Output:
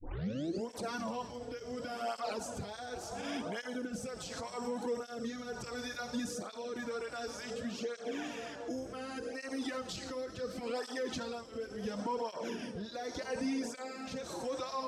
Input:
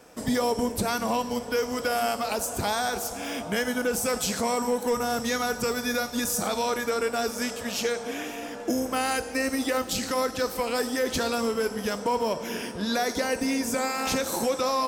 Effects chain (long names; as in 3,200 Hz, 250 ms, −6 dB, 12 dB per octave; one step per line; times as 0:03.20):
turntable start at the beginning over 0.68 s
low-pass filter 5,700 Hz 12 dB per octave
parametric band 2,300 Hz −3.5 dB 0.7 octaves
brickwall limiter −26 dBFS, peak gain reduction 9 dB
rotating-speaker cabinet horn 0.8 Hz
through-zero flanger with one copy inverted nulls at 0.69 Hz, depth 5.3 ms